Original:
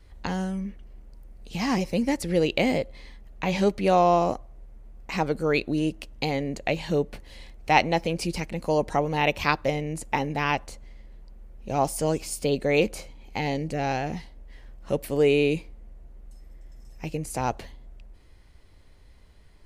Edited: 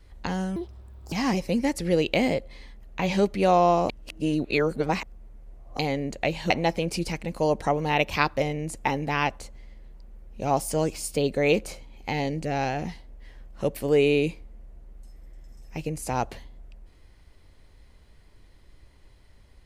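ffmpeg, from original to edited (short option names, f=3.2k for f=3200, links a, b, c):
-filter_complex "[0:a]asplit=6[a][b][c][d][e][f];[a]atrim=end=0.564[g];[b]atrim=start=0.56:end=1.56,asetpts=PTS-STARTPTS,asetrate=78498,aresample=44100,atrim=end_sample=24775,asetpts=PTS-STARTPTS[h];[c]atrim=start=1.556:end=4.332[i];[d]atrim=start=4.328:end=6.232,asetpts=PTS-STARTPTS,areverse[j];[e]atrim=start=6.228:end=6.942[k];[f]atrim=start=7.778[l];[g][h]acrossfade=d=0.004:c1=hsin:c2=hsin[m];[m][i]acrossfade=d=0.004:c1=hsin:c2=hsin[n];[n][j]acrossfade=d=0.004:c1=hsin:c2=hsin[o];[o][k]acrossfade=d=0.004:c1=hsin:c2=hsin[p];[p][l]acrossfade=d=0.004:c1=hsin:c2=hsin"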